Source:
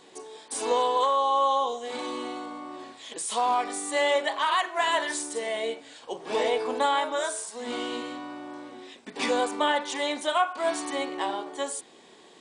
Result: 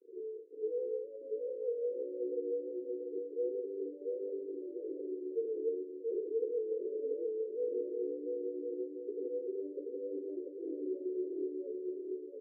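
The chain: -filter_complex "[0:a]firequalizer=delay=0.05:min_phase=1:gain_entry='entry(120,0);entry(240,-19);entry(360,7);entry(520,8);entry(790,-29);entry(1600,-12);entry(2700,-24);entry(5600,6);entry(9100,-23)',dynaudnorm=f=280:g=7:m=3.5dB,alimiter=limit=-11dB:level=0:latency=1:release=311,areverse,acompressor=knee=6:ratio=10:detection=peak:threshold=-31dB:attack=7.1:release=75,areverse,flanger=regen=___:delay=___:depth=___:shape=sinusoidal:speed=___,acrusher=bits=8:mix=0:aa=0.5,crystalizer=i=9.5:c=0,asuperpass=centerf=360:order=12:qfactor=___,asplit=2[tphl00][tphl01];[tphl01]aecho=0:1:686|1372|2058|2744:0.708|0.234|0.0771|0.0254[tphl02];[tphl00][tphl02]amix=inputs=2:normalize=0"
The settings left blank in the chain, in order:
35, 0.9, 3.2, 1.9, 1.6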